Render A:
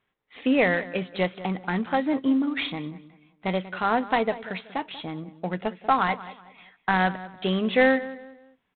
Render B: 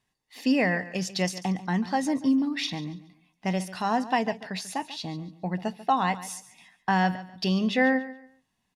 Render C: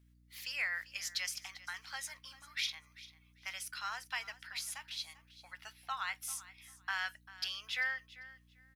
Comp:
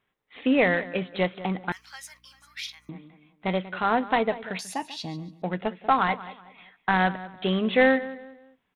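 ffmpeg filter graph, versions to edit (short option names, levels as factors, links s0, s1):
-filter_complex "[0:a]asplit=3[s0][s1][s2];[s0]atrim=end=1.722[s3];[2:a]atrim=start=1.718:end=2.892[s4];[s1]atrim=start=2.888:end=4.592[s5];[1:a]atrim=start=4.588:end=5.422[s6];[s2]atrim=start=5.418[s7];[s3][s4]acrossfade=d=0.004:c1=hsin:c2=hsin[s8];[s8][s5]acrossfade=d=0.004:c1=hsin:c2=hsin[s9];[s9][s6]acrossfade=d=0.004:c1=hsin:c2=hsin[s10];[s10][s7]acrossfade=d=0.004:c1=hsin:c2=hsin"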